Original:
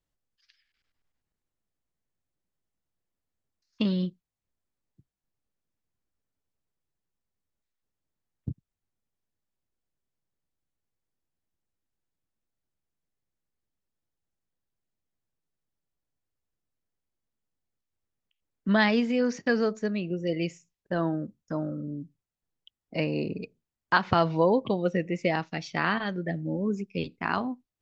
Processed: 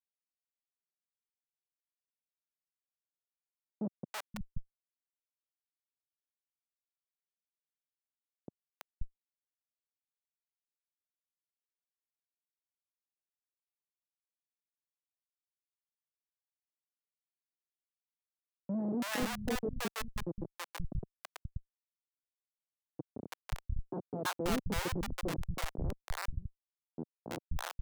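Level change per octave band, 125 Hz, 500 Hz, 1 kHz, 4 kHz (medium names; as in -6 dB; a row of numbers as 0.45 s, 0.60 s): -9.0 dB, -14.0 dB, -12.5 dB, -7.0 dB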